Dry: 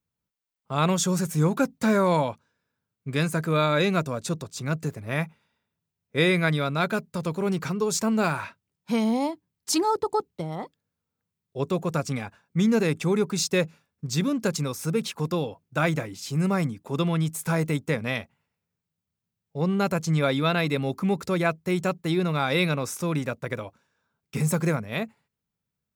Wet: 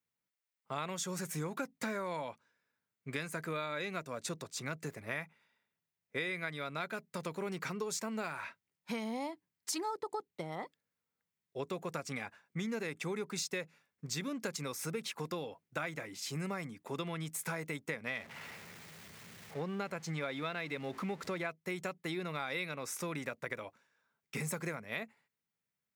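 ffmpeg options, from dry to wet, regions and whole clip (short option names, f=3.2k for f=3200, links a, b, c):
-filter_complex "[0:a]asettb=1/sr,asplit=3[a][b][c];[a]atrim=end=18.074[d];[b]atrim=start=18.07:end=21.49,asetpts=PTS-STARTPTS,afade=t=in:d=0.004:c=qsin,afade=t=out:st=3.416:d=0.004:c=qsin,aeval=exprs='val(0)+0.5*0.0141*sgn(val(0))':c=same,highshelf=f=7.6k:g=-9[e];[c]atrim=start=21.486[f];[d][e]acrossfade=d=0.004:c1=hsin:c2=qsin[g];[g][f]acrossfade=d=0.004:c1=qsin:c2=hsin,highpass=f=340:p=1,equalizer=f=2k:t=o:w=0.55:g=6.5,acompressor=threshold=-31dB:ratio=6,volume=-4dB"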